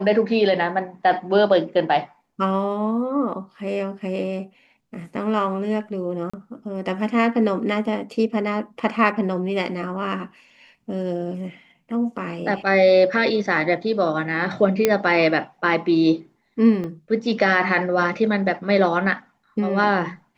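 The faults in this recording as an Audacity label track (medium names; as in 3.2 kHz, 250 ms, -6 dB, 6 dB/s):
6.300000	6.330000	dropout 35 ms
14.850000	14.850000	pop -3 dBFS
16.840000	16.840000	dropout 2.8 ms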